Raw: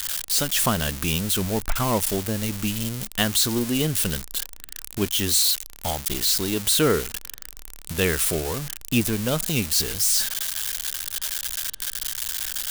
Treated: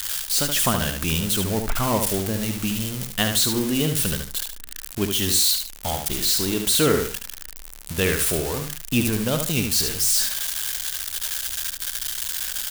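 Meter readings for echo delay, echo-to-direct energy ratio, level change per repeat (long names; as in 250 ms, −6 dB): 73 ms, −5.5 dB, −12.0 dB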